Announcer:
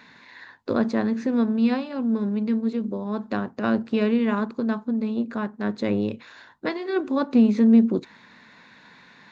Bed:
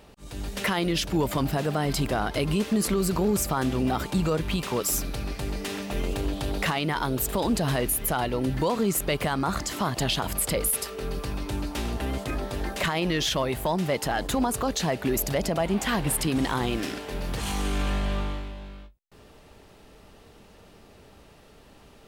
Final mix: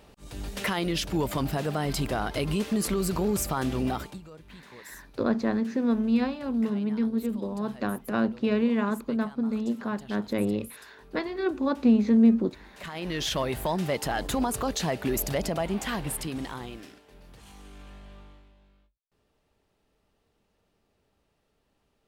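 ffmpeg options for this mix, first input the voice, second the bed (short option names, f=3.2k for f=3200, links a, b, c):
-filter_complex "[0:a]adelay=4500,volume=-3dB[a];[1:a]volume=17.5dB,afade=t=out:st=3.88:d=0.32:silence=0.105925,afade=t=in:st=12.74:d=0.64:silence=0.1,afade=t=out:st=15.37:d=1.64:silence=0.11885[b];[a][b]amix=inputs=2:normalize=0"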